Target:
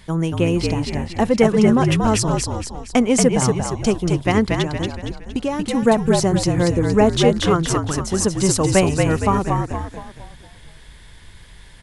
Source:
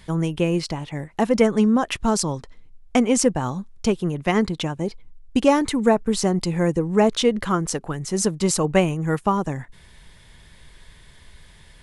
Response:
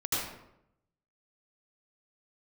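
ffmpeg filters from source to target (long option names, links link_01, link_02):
-filter_complex "[0:a]asettb=1/sr,asplit=3[link_01][link_02][link_03];[link_01]atrim=end=4.584[link_04];[link_02]atrim=start=4.58:end=5.75,asetpts=PTS-STARTPTS,afade=type=in:duration=0.004:curve=qsin,afade=type=out:start_time=1.166:duration=0.004:curve=qsin,acompressor=threshold=-23dB:ratio=4[link_05];[link_03]atrim=start=5.746[link_06];[link_04][link_05]acrossfade=duration=0.004:curve1=hsin:curve2=qsin[link_07];[link_07][link_06]acrossfade=duration=0.004:curve1=qsin:curve2=hsin,asplit=7[link_08][link_09][link_10][link_11][link_12][link_13][link_14];[link_09]adelay=232,afreqshift=-58,volume=-3.5dB[link_15];[link_10]adelay=464,afreqshift=-116,volume=-10.4dB[link_16];[link_11]adelay=696,afreqshift=-174,volume=-17.4dB[link_17];[link_12]adelay=928,afreqshift=-232,volume=-24.3dB[link_18];[link_13]adelay=1160,afreqshift=-290,volume=-31.2dB[link_19];[link_14]adelay=1392,afreqshift=-348,volume=-38.2dB[link_20];[link_08][link_15][link_16][link_17][link_18][link_19][link_20]amix=inputs=7:normalize=0,volume=2dB"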